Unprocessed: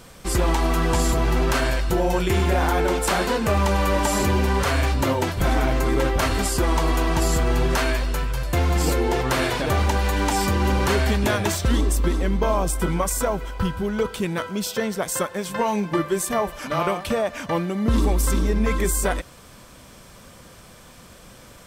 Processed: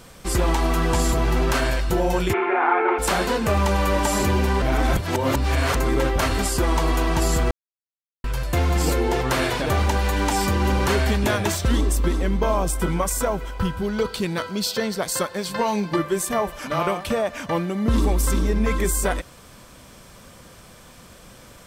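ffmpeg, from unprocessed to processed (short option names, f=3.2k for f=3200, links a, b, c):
-filter_complex "[0:a]asplit=3[a][b][c];[a]afade=t=out:st=2.32:d=0.02[d];[b]highpass=f=360:w=0.5412,highpass=f=360:w=1.3066,equalizer=f=380:t=q:w=4:g=7,equalizer=f=550:t=q:w=4:g=-9,equalizer=f=850:t=q:w=4:g=7,equalizer=f=1.3k:t=q:w=4:g=8,equalizer=f=2.3k:t=q:w=4:g=8,lowpass=f=2.3k:w=0.5412,lowpass=f=2.3k:w=1.3066,afade=t=in:st=2.32:d=0.02,afade=t=out:st=2.98:d=0.02[e];[c]afade=t=in:st=2.98:d=0.02[f];[d][e][f]amix=inputs=3:normalize=0,asettb=1/sr,asplit=3[g][h][i];[g]atrim=end=13.824[j];[h]atrim=start=13.82:end=15.96,asetpts=PTS-STARTPTS,afade=t=in:d=0.004:c=qsin,afade=t=out:st=2.136:d=0.004:c=qsin,equalizer=f=4.4k:w=4.1:g=11.5[k];[i]atrim=start=15.956[l];[j][k]acrossfade=d=0.004:c1=hsin:c2=qsin[m];[m][l]acrossfade=d=0.004:c1=qsin:c2=hsin,asplit=5[n][o][p][q][r];[n]atrim=end=4.622[s];[o]atrim=start=4.618:end=5.762,asetpts=PTS-STARTPTS,areverse[t];[p]atrim=start=5.758:end=7.51,asetpts=PTS-STARTPTS,afade=t=out:st=1.748:d=0.004:c=hsin[u];[q]atrim=start=7.51:end=8.24,asetpts=PTS-STARTPTS,volume=0[v];[r]atrim=start=8.24,asetpts=PTS-STARTPTS,afade=t=in:d=0.004:c=hsin[w];[s][t]acrossfade=d=0.004:c1=hsin:c2=hsin[x];[u][v][w]concat=n=3:v=0:a=1[y];[x][y]acrossfade=d=0.004:c1=hsin:c2=hsin"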